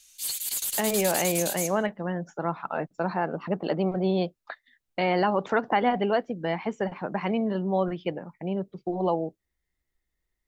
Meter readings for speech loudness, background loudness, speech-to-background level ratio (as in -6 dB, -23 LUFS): -28.0 LUFS, -28.5 LUFS, 0.5 dB